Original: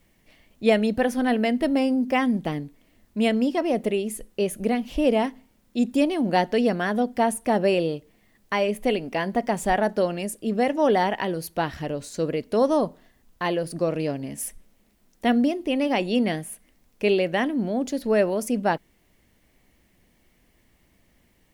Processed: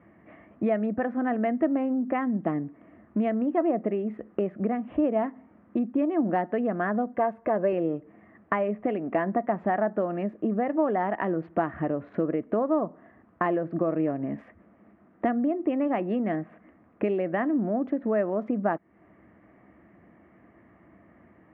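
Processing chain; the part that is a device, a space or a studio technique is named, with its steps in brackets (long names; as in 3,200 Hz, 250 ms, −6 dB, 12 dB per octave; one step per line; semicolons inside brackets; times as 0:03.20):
adaptive Wiener filter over 9 samples
bass amplifier (downward compressor 4 to 1, threshold −36 dBFS, peak gain reduction 18.5 dB; loudspeaker in its box 77–2,100 Hz, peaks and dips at 200 Hz +5 dB, 320 Hz +9 dB, 670 Hz +8 dB, 1,200 Hz +10 dB, 1,800 Hz +4 dB)
0:07.14–0:07.73: comb filter 1.9 ms, depth 51%
level +5.5 dB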